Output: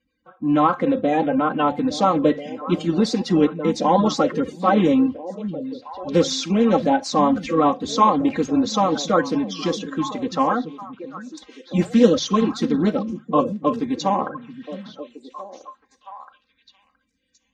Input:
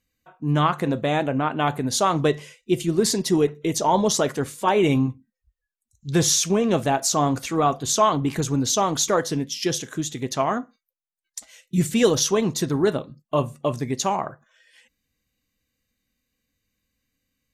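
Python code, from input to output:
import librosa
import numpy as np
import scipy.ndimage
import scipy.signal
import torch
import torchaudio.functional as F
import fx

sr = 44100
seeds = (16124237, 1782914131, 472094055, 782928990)

y = fx.spec_quant(x, sr, step_db=30)
y = scipy.signal.sosfilt(scipy.signal.butter(2, 43.0, 'highpass', fs=sr, output='sos'), y)
y = fx.air_absorb(y, sr, metres=200.0)
y = y + 0.92 * np.pad(y, (int(3.8 * sr / 1000.0), 0))[:len(y)]
y = fx.echo_stepped(y, sr, ms=670, hz=170.0, octaves=1.4, feedback_pct=70, wet_db=-8.0)
y = y * 10.0 ** (2.0 / 20.0)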